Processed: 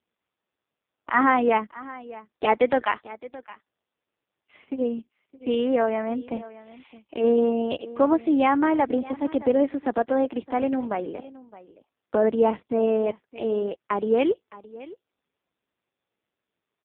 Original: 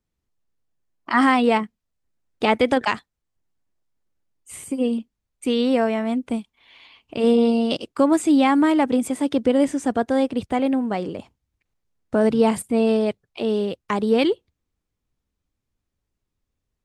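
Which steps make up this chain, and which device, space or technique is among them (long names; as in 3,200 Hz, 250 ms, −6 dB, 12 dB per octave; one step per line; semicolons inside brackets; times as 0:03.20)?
0:07.76–0:08.85: high-pass filter 93 Hz → 260 Hz 12 dB per octave
satellite phone (band-pass filter 320–3,100 Hz; single-tap delay 617 ms −18.5 dB; AMR narrowband 5.15 kbit/s 8,000 Hz)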